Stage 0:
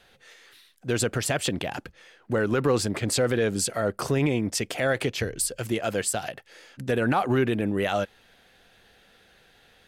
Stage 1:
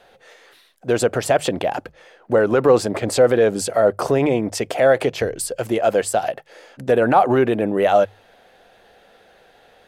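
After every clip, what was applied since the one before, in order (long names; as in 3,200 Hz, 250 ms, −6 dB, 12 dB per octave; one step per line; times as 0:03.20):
parametric band 640 Hz +13 dB 1.8 octaves
mains-hum notches 50/100/150 Hz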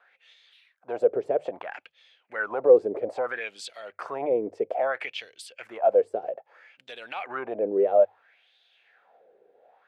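parametric band 2,300 Hz +5 dB 0.24 octaves
LFO wah 0.61 Hz 410–3,700 Hz, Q 4.3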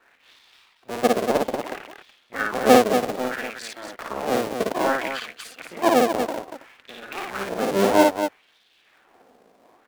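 sub-harmonics by changed cycles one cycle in 2, muted
on a send: loudspeakers that aren't time-aligned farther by 19 metres −2 dB, 81 metres −7 dB
on the sum: level +4 dB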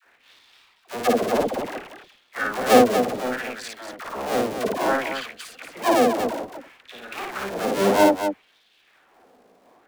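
all-pass dispersion lows, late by 60 ms, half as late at 630 Hz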